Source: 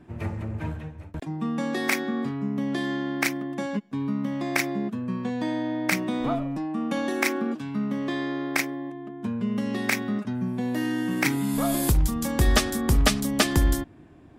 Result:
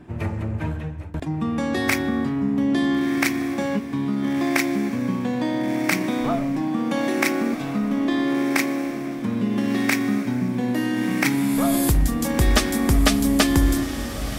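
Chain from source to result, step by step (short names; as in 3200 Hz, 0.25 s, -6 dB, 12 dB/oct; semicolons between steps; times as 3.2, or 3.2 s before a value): in parallel at 0 dB: compressor, threshold -30 dBFS, peak gain reduction 14.5 dB; on the sum: diffused feedback echo 1.425 s, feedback 41%, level -9 dB; FDN reverb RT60 2.5 s, low-frequency decay 1×, high-frequency decay 0.6×, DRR 18 dB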